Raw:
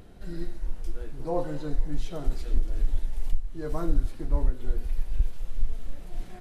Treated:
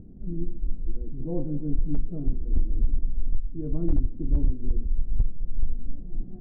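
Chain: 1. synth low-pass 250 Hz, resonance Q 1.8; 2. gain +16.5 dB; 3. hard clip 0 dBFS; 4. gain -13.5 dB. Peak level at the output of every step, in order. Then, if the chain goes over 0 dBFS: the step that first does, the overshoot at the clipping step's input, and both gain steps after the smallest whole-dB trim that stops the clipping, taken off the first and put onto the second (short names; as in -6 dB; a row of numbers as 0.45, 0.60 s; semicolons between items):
-10.5, +6.0, 0.0, -13.5 dBFS; step 2, 6.0 dB; step 2 +10.5 dB, step 4 -7.5 dB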